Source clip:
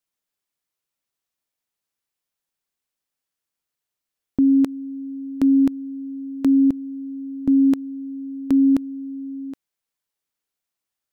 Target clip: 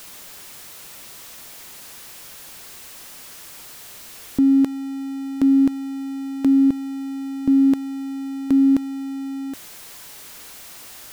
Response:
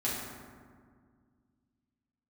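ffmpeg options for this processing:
-af "aeval=exprs='val(0)+0.5*0.0211*sgn(val(0))':c=same"

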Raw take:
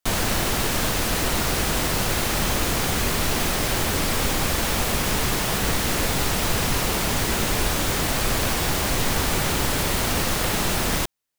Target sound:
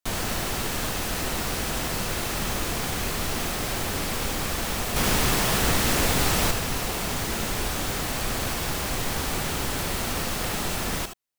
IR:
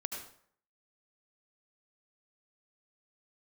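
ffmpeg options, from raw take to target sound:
-filter_complex "[0:a]asettb=1/sr,asplit=3[a][b][c];[a]atrim=end=4.964[d];[b]atrim=start=4.96:end=6.51,asetpts=PTS-STARTPTS,afade=t=in:d=0.004:c=qsin,afade=t=out:st=1.546:d=0.004:c=qsin,acontrast=52[e];[c]atrim=start=6.506[f];[d][e]acrossfade=d=0.004:c1=hsin:c2=qsin[g];[g][f]acrossfade=d=0.004:c1=qsin:c2=hsin[h];[1:a]atrim=start_sample=2205,atrim=end_sample=3528[i];[h][i]afir=irnorm=-1:irlink=0,volume=-4dB"

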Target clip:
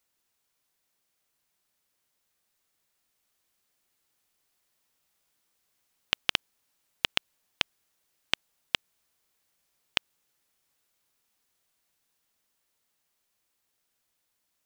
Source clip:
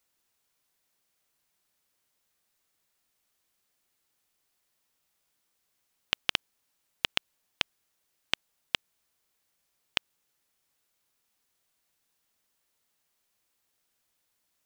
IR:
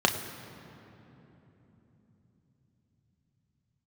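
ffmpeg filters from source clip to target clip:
-af "dynaudnorm=f=510:g=13:m=11.5dB,volume=-1dB"

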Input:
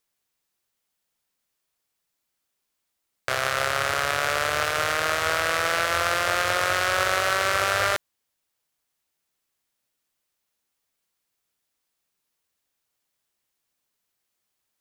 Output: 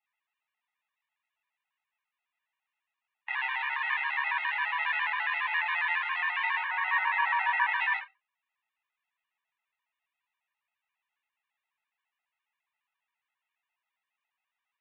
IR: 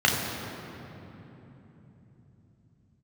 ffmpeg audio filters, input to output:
-filter_complex "[0:a]asettb=1/sr,asplit=3[a][b][c];[a]atrim=end=6.634[d];[b]atrim=start=6.63:end=7.72,asetpts=PTS-STARTPTS,afade=t=in:d=0.004:c=qsin,afade=t=out:st=1.086:d=0.004:c=qsin,highshelf=f=2k:g=-12[e];[c]atrim=start=7.716[f];[d][e]acrossfade=d=0.004:c1=hsin:c2=qsin[g];[g][f]acrossfade=d=0.004:c1=qsin:c2=hsin,alimiter=limit=-14dB:level=0:latency=1:release=424,flanger=delay=9.5:depth=7.6:regen=-64:speed=0.57:shape=sinusoidal,highpass=f=340:t=q:w=0.5412,highpass=f=340:t=q:w=1.307,lowpass=f=2.6k:t=q:w=0.5176,lowpass=f=2.6k:t=q:w=0.7071,lowpass=f=2.6k:t=q:w=1.932,afreqshift=380[h];[1:a]atrim=start_sample=2205,atrim=end_sample=4410,asetrate=57330,aresample=44100[i];[h][i]afir=irnorm=-1:irlink=0,afftfilt=real='re*gt(sin(2*PI*7.3*pts/sr)*(1-2*mod(floor(b*sr/1024/310),2)),0)':imag='im*gt(sin(2*PI*7.3*pts/sr)*(1-2*mod(floor(b*sr/1024/310),2)),0)':win_size=1024:overlap=0.75,volume=-5dB"

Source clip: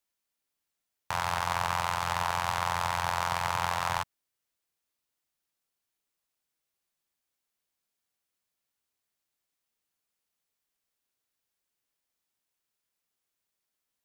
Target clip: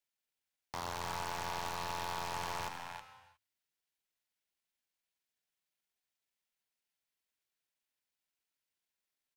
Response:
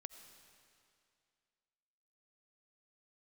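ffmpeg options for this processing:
-filter_complex "[0:a]equalizer=f=2.5k:w=0.6:g=5,bandreject=f=1.2k:w=8.8,atempo=1.5,bandreject=f=50:t=h:w=6,bandreject=f=100:t=h:w=6,aecho=1:1:317:0.282,aeval=exprs='0.0708*(abs(mod(val(0)/0.0708+3,4)-2)-1)':c=same[a];[1:a]atrim=start_sample=2205,afade=t=out:st=0.42:d=0.01,atrim=end_sample=18963[b];[a][b]afir=irnorm=-1:irlink=0,volume=-1.5dB"

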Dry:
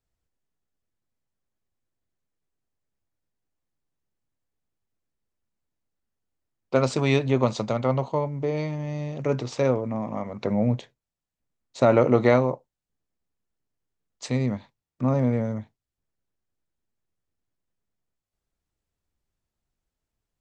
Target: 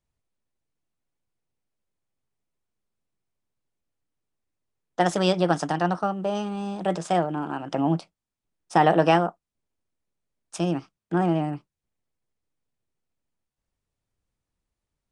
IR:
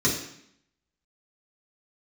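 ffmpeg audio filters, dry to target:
-af "asetrate=59535,aresample=44100,aresample=22050,aresample=44100"

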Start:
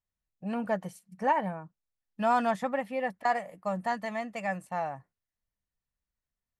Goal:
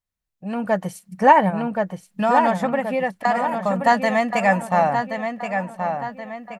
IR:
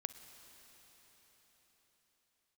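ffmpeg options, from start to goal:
-filter_complex "[0:a]asplit=3[a][b][c];[a]afade=t=out:st=1.49:d=0.02[d];[b]acompressor=threshold=-38dB:ratio=2,afade=t=in:st=1.49:d=0.02,afade=t=out:st=3.85:d=0.02[e];[c]afade=t=in:st=3.85:d=0.02[f];[d][e][f]amix=inputs=3:normalize=0,asplit=2[g][h];[h]adelay=1076,lowpass=f=4.2k:p=1,volume=-6.5dB,asplit=2[i][j];[j]adelay=1076,lowpass=f=4.2k:p=1,volume=0.45,asplit=2[k][l];[l]adelay=1076,lowpass=f=4.2k:p=1,volume=0.45,asplit=2[m][n];[n]adelay=1076,lowpass=f=4.2k:p=1,volume=0.45,asplit=2[o][p];[p]adelay=1076,lowpass=f=4.2k:p=1,volume=0.45[q];[g][i][k][m][o][q]amix=inputs=6:normalize=0,dynaudnorm=f=170:g=9:m=12dB,volume=2.5dB"

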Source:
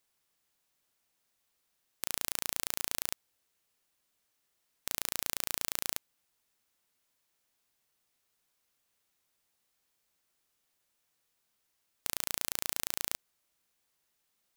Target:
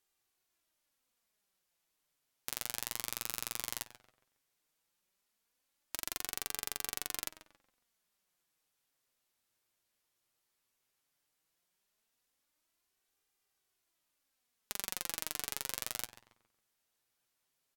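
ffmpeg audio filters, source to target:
-filter_complex "[0:a]asplit=2[a][b];[b]adelay=113,lowpass=f=3.5k:p=1,volume=-12dB,asplit=2[c][d];[d]adelay=113,lowpass=f=3.5k:p=1,volume=0.39,asplit=2[e][f];[f]adelay=113,lowpass=f=3.5k:p=1,volume=0.39,asplit=2[g][h];[h]adelay=113,lowpass=f=3.5k:p=1,volume=0.39[i];[a][c][e][g][i]amix=inputs=5:normalize=0,asetrate=36162,aresample=44100,flanger=delay=2.5:depth=6.2:regen=45:speed=0.15:shape=sinusoidal"

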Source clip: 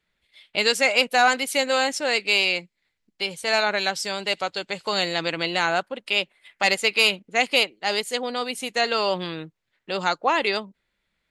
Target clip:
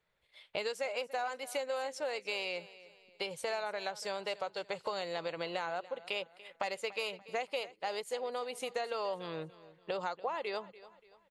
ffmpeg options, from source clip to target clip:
-af "equalizer=f=125:t=o:w=1:g=7,equalizer=f=250:t=o:w=1:g=-6,equalizer=f=500:t=o:w=1:g=10,equalizer=f=1k:t=o:w=1:g=7,acompressor=threshold=-27dB:ratio=6,aecho=1:1:289|578|867:0.126|0.0516|0.0212,volume=-7.5dB"

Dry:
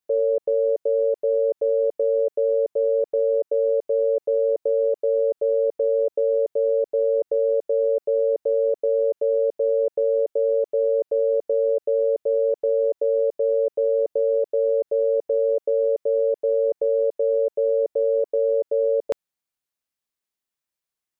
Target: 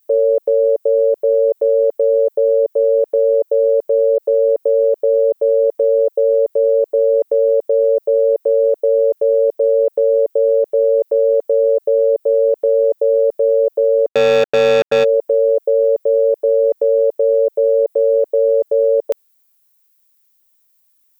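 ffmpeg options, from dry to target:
-filter_complex "[0:a]aemphasis=mode=production:type=bsi,asplit=3[a][b][c];[a]afade=t=out:st=14.07:d=0.02[d];[b]acrusher=bits=3:mix=0:aa=0.5,afade=t=in:st=14.07:d=0.02,afade=t=out:st=15.03:d=0.02[e];[c]afade=t=in:st=15.03:d=0.02[f];[d][e][f]amix=inputs=3:normalize=0,alimiter=level_in=15.5dB:limit=-1dB:release=50:level=0:latency=1,volume=-6dB"

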